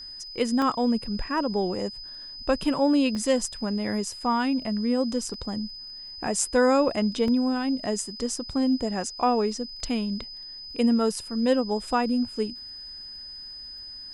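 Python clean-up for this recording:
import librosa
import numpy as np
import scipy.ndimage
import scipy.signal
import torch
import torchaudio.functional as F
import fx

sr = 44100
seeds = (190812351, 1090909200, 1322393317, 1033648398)

y = fx.fix_declick_ar(x, sr, threshold=6.5)
y = fx.notch(y, sr, hz=5000.0, q=30.0)
y = fx.fix_interpolate(y, sr, at_s=(0.62, 3.15, 5.34, 6.27, 7.28), length_ms=1.7)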